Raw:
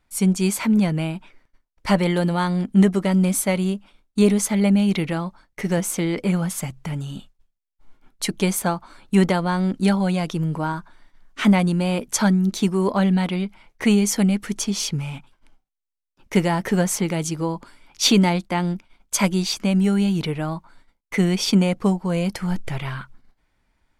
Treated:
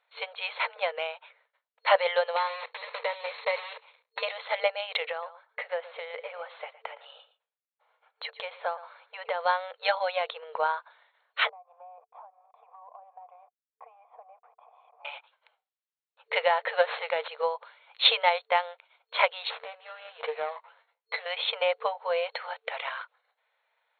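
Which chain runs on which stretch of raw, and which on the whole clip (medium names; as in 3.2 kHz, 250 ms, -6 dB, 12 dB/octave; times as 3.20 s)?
2.36–4.23 s: block-companded coder 3-bit + rippled EQ curve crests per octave 0.9, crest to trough 7 dB + compression 10:1, threshold -20 dBFS
5.11–9.41 s: compression 2.5:1, threshold -26 dBFS + distance through air 220 m + delay 115 ms -14.5 dB
11.49–15.05 s: send-on-delta sampling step -36 dBFS + cascade formant filter a + compression 16:1, threshold -44 dBFS
16.75–17.28 s: low-pass 8.5 kHz + sliding maximum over 5 samples
19.50–21.26 s: compression 10:1, threshold -25 dBFS + doubling 13 ms -5.5 dB + sliding maximum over 9 samples
whole clip: FFT band-pass 450–4300 Hz; transient shaper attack +4 dB, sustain 0 dB; trim -1 dB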